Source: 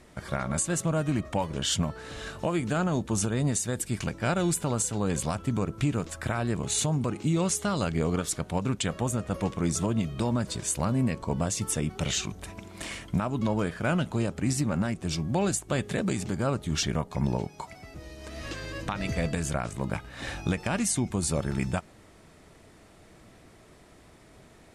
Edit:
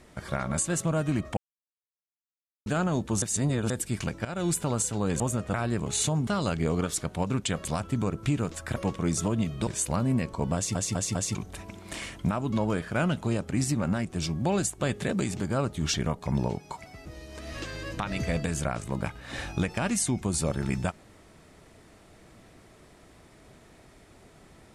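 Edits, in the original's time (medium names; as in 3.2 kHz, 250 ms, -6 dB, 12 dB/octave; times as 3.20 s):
1.37–2.66 s: mute
3.22–3.70 s: reverse
4.25–4.51 s: fade in, from -17 dB
5.20–6.31 s: swap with 9.00–9.34 s
7.04–7.62 s: delete
10.25–10.56 s: delete
11.44 s: stutter in place 0.20 s, 4 plays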